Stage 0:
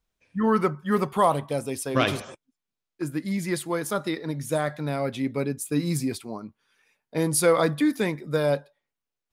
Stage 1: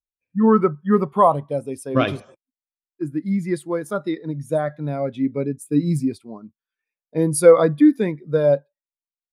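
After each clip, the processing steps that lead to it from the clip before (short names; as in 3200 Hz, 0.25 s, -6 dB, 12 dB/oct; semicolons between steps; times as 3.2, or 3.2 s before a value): spectral expander 1.5:1; gain +7.5 dB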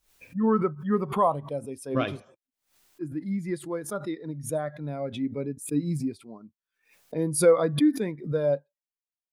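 backwards sustainer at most 130 dB/s; gain -8 dB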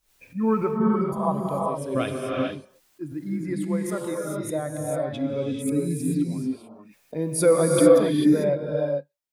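spectral repair 0.87–1.25, 400–4500 Hz both; non-linear reverb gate 0.47 s rising, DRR -1 dB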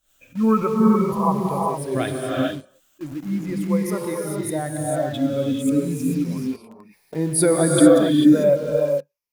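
moving spectral ripple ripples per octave 0.84, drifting -0.37 Hz, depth 10 dB; in parallel at -9.5 dB: bit-crush 6-bit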